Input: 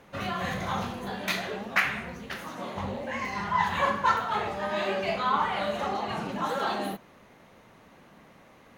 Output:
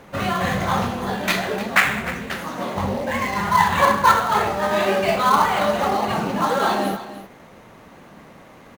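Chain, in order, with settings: in parallel at -8.5 dB: sample-rate reducer 5300 Hz, jitter 20%; on the sum: echo 0.303 s -14 dB; gain +7 dB

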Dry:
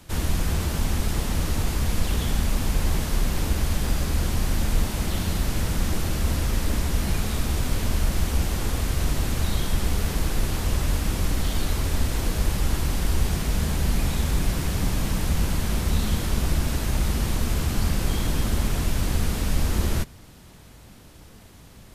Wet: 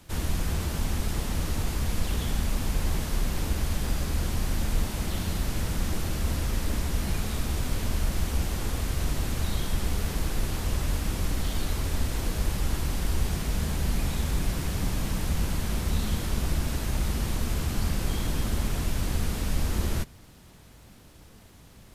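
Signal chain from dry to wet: crackle 210/s -49 dBFS; gain -4 dB

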